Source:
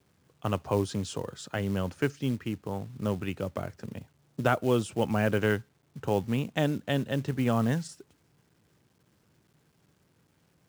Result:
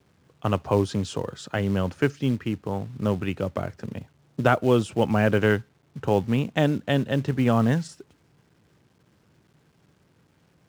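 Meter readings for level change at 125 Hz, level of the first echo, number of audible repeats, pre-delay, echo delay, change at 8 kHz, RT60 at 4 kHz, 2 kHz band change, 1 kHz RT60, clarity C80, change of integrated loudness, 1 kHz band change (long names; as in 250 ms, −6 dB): +5.5 dB, no echo audible, no echo audible, no reverb audible, no echo audible, +0.5 dB, no reverb audible, +5.0 dB, no reverb audible, no reverb audible, +5.5 dB, +5.5 dB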